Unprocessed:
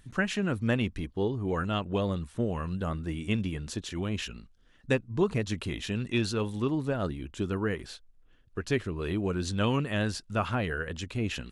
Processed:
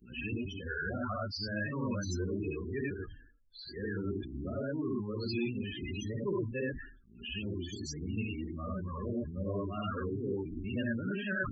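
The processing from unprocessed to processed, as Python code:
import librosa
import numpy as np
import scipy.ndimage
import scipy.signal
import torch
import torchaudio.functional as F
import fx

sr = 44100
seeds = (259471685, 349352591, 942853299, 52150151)

p1 = np.flip(x).copy()
p2 = fx.level_steps(p1, sr, step_db=21)
p3 = p1 + F.gain(torch.from_numpy(p2), -2.0).numpy()
p4 = fx.notch(p3, sr, hz=3800.0, q=10.0)
p5 = fx.leveller(p4, sr, passes=1)
p6 = fx.rev_gated(p5, sr, seeds[0], gate_ms=120, shape='rising', drr_db=-3.0)
p7 = np.clip(p6, -10.0 ** (-12.0 / 20.0), 10.0 ** (-12.0 / 20.0))
p8 = fx.low_shelf(p7, sr, hz=220.0, db=-3.0)
p9 = fx.spec_topn(p8, sr, count=16)
p10 = scipy.signal.lfilter([1.0, -0.8], [1.0], p9)
y = fx.sustainer(p10, sr, db_per_s=84.0)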